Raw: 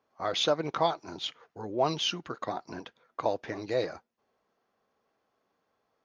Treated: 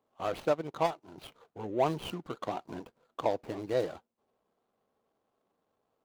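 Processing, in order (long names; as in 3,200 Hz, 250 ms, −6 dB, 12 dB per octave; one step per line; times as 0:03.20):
running median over 25 samples
0:00.40–0:01.18: expander for the loud parts 1.5 to 1, over −39 dBFS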